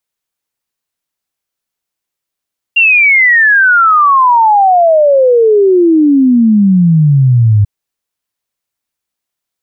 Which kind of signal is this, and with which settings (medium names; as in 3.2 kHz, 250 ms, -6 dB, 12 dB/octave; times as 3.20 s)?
log sweep 2.8 kHz -> 100 Hz 4.89 s -4 dBFS